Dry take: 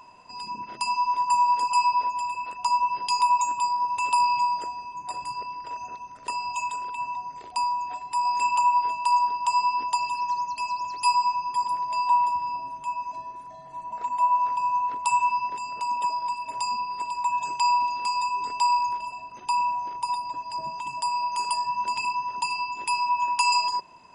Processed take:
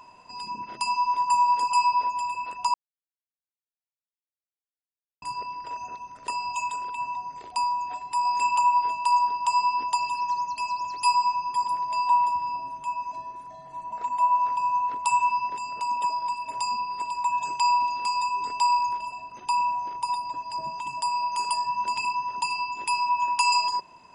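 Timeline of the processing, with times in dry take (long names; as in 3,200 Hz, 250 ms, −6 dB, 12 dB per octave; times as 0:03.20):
0:02.74–0:05.22: silence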